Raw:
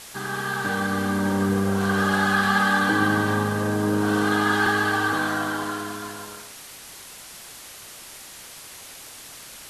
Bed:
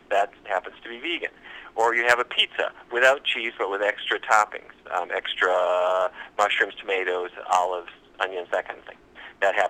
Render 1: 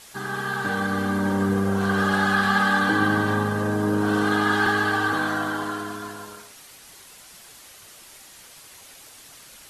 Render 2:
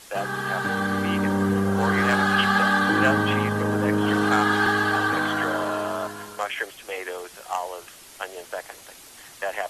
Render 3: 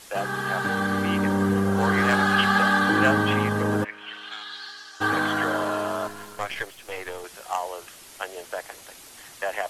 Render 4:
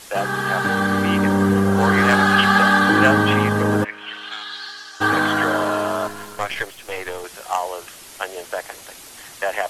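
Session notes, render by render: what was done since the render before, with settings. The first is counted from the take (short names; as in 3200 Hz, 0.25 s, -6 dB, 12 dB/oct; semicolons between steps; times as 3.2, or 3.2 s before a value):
denoiser 6 dB, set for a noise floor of -42 dBFS
add bed -7.5 dB
3.83–5 band-pass 2100 Hz -> 6100 Hz, Q 3.7; 6.08–7.24 half-wave gain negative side -7 dB
gain +5.5 dB; limiter -2 dBFS, peak gain reduction 1 dB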